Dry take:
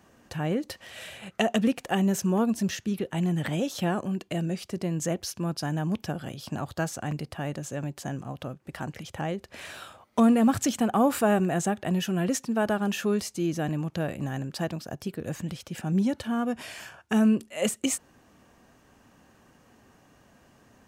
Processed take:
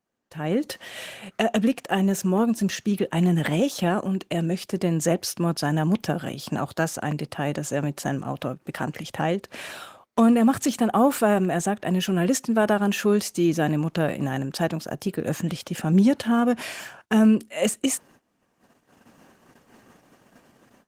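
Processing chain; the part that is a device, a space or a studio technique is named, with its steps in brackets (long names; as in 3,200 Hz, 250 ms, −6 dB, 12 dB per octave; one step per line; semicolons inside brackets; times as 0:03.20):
video call (high-pass filter 150 Hz 12 dB per octave; automatic gain control gain up to 16 dB; noise gate −42 dBFS, range −17 dB; level −6.5 dB; Opus 20 kbit/s 48,000 Hz)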